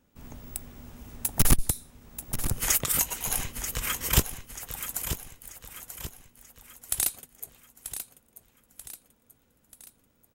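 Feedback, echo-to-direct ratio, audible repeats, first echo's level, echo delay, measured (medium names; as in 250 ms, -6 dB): 46%, -9.0 dB, 4, -10.0 dB, 936 ms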